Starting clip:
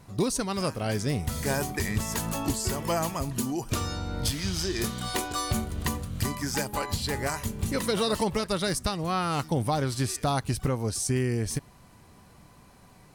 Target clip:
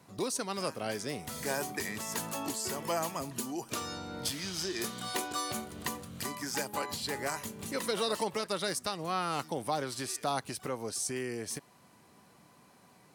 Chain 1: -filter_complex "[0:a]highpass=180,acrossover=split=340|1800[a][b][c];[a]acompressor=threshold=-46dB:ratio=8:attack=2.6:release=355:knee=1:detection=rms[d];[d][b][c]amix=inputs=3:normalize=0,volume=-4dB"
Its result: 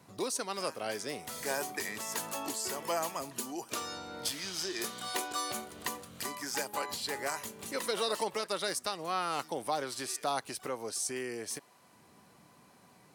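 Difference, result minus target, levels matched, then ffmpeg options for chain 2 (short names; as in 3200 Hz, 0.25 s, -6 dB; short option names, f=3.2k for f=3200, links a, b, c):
compressor: peak gain reduction +9.5 dB
-filter_complex "[0:a]highpass=180,acrossover=split=340|1800[a][b][c];[a]acompressor=threshold=-35dB:ratio=8:attack=2.6:release=355:knee=1:detection=rms[d];[d][b][c]amix=inputs=3:normalize=0,volume=-4dB"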